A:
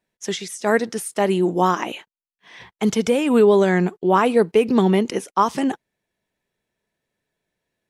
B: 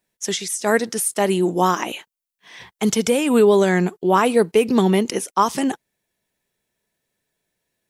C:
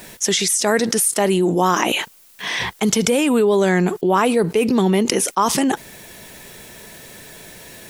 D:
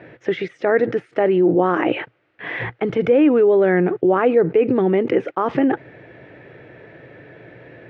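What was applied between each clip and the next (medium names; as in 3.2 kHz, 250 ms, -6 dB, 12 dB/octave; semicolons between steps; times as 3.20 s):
treble shelf 5.5 kHz +11.5 dB
level flattener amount 70%; trim -3 dB
cabinet simulation 100–2100 Hz, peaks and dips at 120 Hz +10 dB, 210 Hz -10 dB, 310 Hz +7 dB, 510 Hz +5 dB, 1 kHz -9 dB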